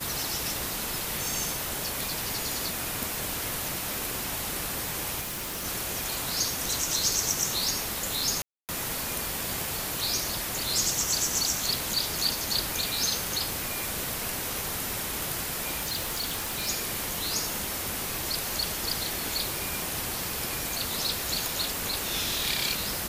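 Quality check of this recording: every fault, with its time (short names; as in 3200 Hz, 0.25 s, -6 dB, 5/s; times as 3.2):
5.2–5.66 clipped -31 dBFS
8.42–8.69 gap 0.268 s
15.79–16.69 clipped -26.5 dBFS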